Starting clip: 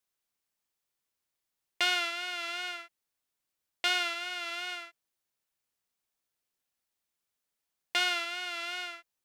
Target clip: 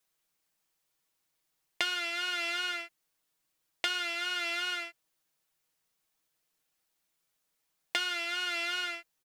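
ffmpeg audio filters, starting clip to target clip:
ffmpeg -i in.wav -af "aecho=1:1:6.3:0.58,acompressor=threshold=-32dB:ratio=12,volume=4.5dB" out.wav

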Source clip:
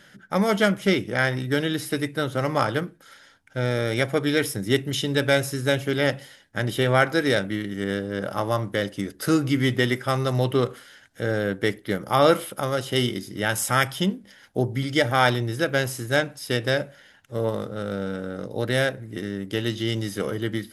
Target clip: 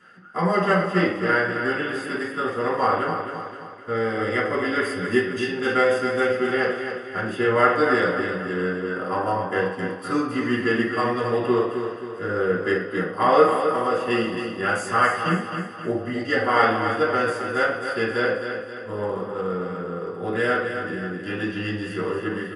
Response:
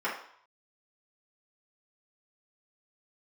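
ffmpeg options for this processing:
-filter_complex "[0:a]aecho=1:1:243|486|729|972|1215|1458:0.422|0.202|0.0972|0.0466|0.0224|0.0107[link_01];[1:a]atrim=start_sample=2205[link_02];[link_01][link_02]afir=irnorm=-1:irlink=0,asetrate=40517,aresample=44100,volume=-7.5dB"

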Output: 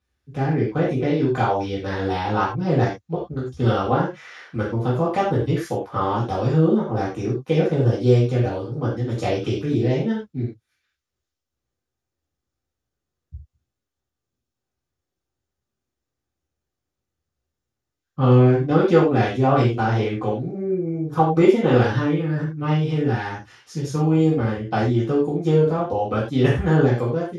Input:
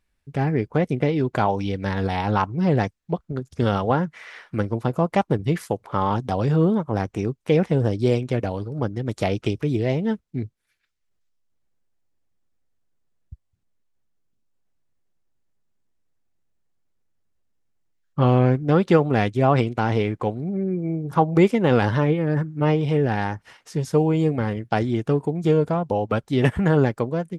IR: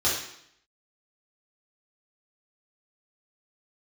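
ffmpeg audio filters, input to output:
-filter_complex "[0:a]asettb=1/sr,asplit=3[link_01][link_02][link_03];[link_01]atrim=end=21.814[link_04];[link_02]atrim=start=21.81:end=24.07,asetpts=PTS-STARTPTS,afade=type=in:duration=0.004:curve=qsin,afade=type=out:start_time=2.256:duration=0.004:curve=qsin,equalizer=frequency=630:width=1.2:gain=-6[link_05];[link_03]atrim=start=24.066[link_06];[link_04][link_05]acrossfade=duration=0.004:curve1=hsin:curve2=qsin[link_07];[link_07][link_06]acrossfade=duration=0.004:curve1=qsin:curve2=hsin[link_08];[1:a]atrim=start_sample=2205,afade=type=out:start_time=0.16:duration=0.01,atrim=end_sample=7497[link_09];[link_08][link_09]afir=irnorm=-1:irlink=0,volume=-11.5dB"

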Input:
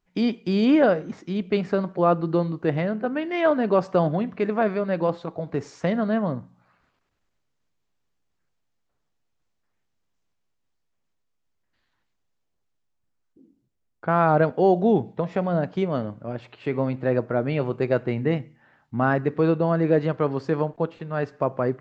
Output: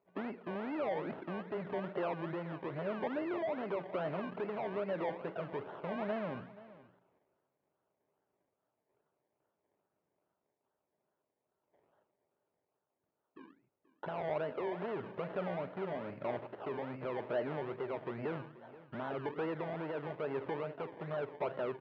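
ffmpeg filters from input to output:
ffmpeg -i in.wav -af "alimiter=limit=-17.5dB:level=0:latency=1:release=202,acompressor=threshold=-29dB:ratio=6,asoftclip=type=tanh:threshold=-36dB,aphaser=in_gain=1:out_gain=1:delay=1.1:decay=0.24:speed=0.98:type=triangular,acrusher=samples=26:mix=1:aa=0.000001:lfo=1:lforange=15.6:lforate=2.4,highpass=160,equalizer=frequency=220:width_type=q:width=4:gain=-3,equalizer=frequency=400:width_type=q:width=4:gain=7,equalizer=frequency=610:width_type=q:width=4:gain=9,equalizer=frequency=900:width_type=q:width=4:gain=5,equalizer=frequency=1400:width_type=q:width=4:gain=4,lowpass=frequency=2800:width=0.5412,lowpass=frequency=2800:width=1.3066,aecho=1:1:481:0.119,volume=-2dB" out.wav

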